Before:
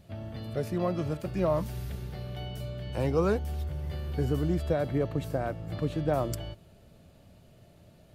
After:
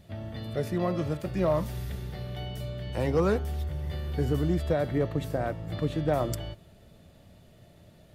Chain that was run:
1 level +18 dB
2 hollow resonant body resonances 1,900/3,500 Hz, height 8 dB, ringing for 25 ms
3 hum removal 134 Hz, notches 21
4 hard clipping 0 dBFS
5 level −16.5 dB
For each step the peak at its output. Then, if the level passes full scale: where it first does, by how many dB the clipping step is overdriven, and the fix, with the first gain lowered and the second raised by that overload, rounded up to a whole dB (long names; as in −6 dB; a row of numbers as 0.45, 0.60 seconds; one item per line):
+3.0, +3.0, +3.5, 0.0, −16.5 dBFS
step 1, 3.5 dB
step 1 +14 dB, step 5 −12.5 dB